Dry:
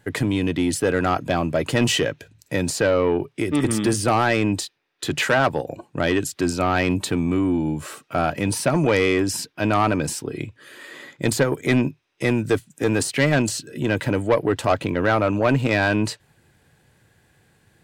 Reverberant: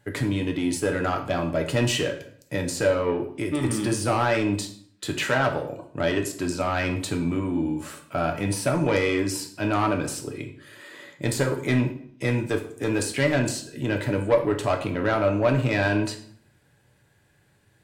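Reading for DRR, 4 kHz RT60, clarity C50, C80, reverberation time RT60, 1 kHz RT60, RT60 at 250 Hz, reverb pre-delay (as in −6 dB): 3.0 dB, 0.50 s, 9.0 dB, 13.0 dB, 0.60 s, 0.55 s, 0.75 s, 3 ms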